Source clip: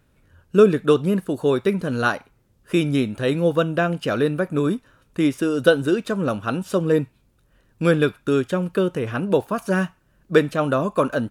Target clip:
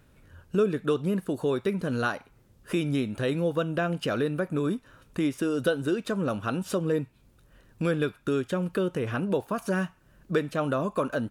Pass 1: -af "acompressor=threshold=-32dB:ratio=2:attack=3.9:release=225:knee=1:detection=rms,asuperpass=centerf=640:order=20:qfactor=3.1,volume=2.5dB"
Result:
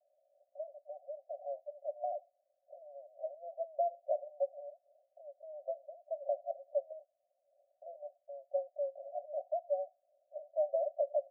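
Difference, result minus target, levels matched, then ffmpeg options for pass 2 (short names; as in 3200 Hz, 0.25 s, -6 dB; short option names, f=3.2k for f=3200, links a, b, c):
500 Hz band +2.5 dB
-af "acompressor=threshold=-32dB:ratio=2:attack=3.9:release=225:knee=1:detection=rms,volume=2.5dB"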